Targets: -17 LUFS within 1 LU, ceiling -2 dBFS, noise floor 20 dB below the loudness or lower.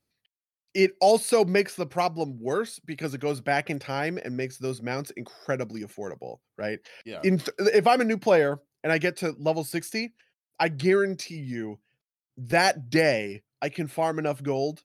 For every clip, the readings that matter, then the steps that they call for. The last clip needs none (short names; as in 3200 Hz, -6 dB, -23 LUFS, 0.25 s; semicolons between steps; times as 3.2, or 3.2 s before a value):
loudness -26.0 LUFS; peak -9.0 dBFS; loudness target -17.0 LUFS
-> gain +9 dB; limiter -2 dBFS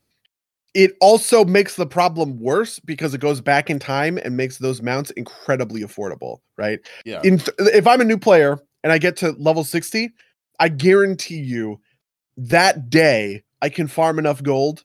loudness -17.5 LUFS; peak -2.0 dBFS; noise floor -87 dBFS